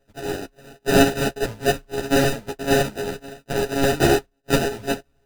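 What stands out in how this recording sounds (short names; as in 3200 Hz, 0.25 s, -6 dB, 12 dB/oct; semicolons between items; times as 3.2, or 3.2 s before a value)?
a buzz of ramps at a fixed pitch in blocks of 64 samples; random-step tremolo 3.5 Hz; aliases and images of a low sample rate 1100 Hz, jitter 0%; a shimmering, thickened sound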